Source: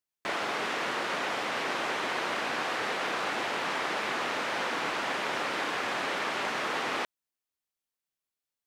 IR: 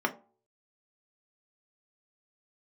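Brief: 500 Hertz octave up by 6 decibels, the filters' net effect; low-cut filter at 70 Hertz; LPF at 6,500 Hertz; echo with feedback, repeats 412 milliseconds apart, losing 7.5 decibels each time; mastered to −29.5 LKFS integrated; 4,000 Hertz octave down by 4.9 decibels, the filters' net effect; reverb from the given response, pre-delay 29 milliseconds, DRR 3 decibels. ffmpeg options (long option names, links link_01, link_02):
-filter_complex "[0:a]highpass=70,lowpass=6500,equalizer=frequency=500:width_type=o:gain=7.5,equalizer=frequency=4000:width_type=o:gain=-6.5,aecho=1:1:412|824|1236|1648|2060:0.422|0.177|0.0744|0.0312|0.0131,asplit=2[link_01][link_02];[1:a]atrim=start_sample=2205,adelay=29[link_03];[link_02][link_03]afir=irnorm=-1:irlink=0,volume=-12.5dB[link_04];[link_01][link_04]amix=inputs=2:normalize=0,volume=-2.5dB"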